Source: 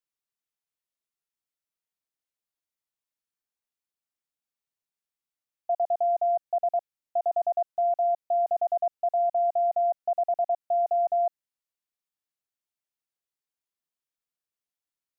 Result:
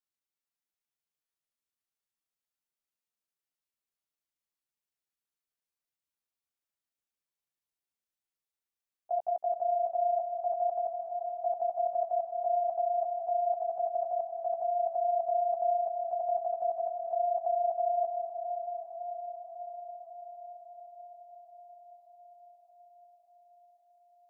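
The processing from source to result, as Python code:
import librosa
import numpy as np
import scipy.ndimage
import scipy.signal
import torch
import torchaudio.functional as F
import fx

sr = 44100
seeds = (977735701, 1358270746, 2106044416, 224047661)

p1 = fx.stretch_grains(x, sr, factor=1.6, grain_ms=74.0)
p2 = p1 + fx.echo_diffused(p1, sr, ms=453, feedback_pct=72, wet_db=-7, dry=0)
y = p2 * librosa.db_to_amplitude(-3.0)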